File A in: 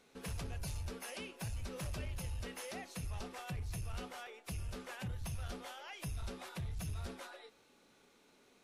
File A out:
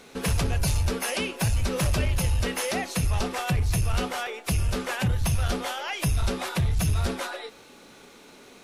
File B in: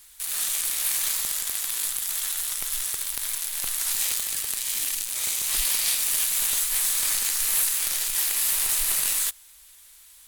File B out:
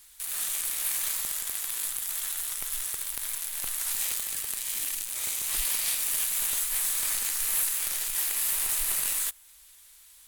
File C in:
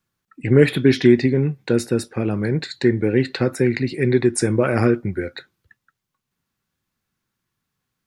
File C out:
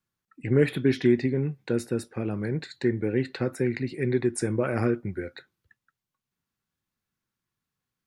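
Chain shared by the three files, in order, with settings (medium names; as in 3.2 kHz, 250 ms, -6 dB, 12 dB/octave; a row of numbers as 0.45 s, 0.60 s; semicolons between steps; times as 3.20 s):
dynamic bell 4.8 kHz, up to -4 dB, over -42 dBFS, Q 0.95; normalise loudness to -27 LUFS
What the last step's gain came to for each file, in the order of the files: +17.5 dB, -3.0 dB, -8.0 dB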